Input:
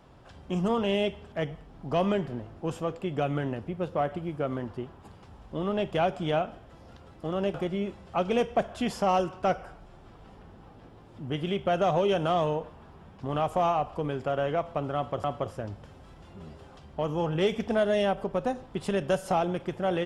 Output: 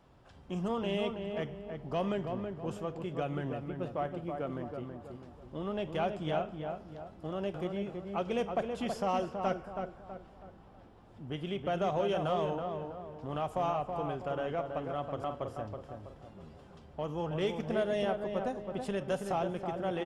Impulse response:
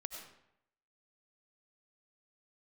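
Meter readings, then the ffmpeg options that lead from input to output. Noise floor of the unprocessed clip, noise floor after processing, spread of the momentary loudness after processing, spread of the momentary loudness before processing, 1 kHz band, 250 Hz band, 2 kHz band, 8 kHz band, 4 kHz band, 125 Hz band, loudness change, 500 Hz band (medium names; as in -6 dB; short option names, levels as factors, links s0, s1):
-51 dBFS, -55 dBFS, 15 LU, 12 LU, -6.0 dB, -5.5 dB, -6.5 dB, no reading, -6.5 dB, -5.5 dB, -6.0 dB, -5.5 dB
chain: -filter_complex "[0:a]asplit=2[s0][s1];[s1]adelay=325,lowpass=f=1700:p=1,volume=0.562,asplit=2[s2][s3];[s3]adelay=325,lowpass=f=1700:p=1,volume=0.44,asplit=2[s4][s5];[s5]adelay=325,lowpass=f=1700:p=1,volume=0.44,asplit=2[s6][s7];[s7]adelay=325,lowpass=f=1700:p=1,volume=0.44,asplit=2[s8][s9];[s9]adelay=325,lowpass=f=1700:p=1,volume=0.44[s10];[s0][s2][s4][s6][s8][s10]amix=inputs=6:normalize=0,volume=0.447"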